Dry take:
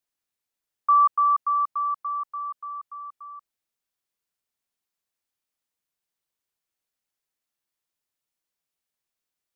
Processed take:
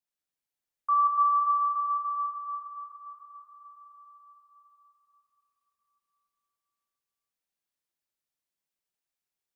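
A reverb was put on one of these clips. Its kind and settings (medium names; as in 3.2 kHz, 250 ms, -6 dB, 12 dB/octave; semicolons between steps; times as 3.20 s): plate-style reverb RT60 4.5 s, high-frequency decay 0.95×, DRR -2 dB; trim -8.5 dB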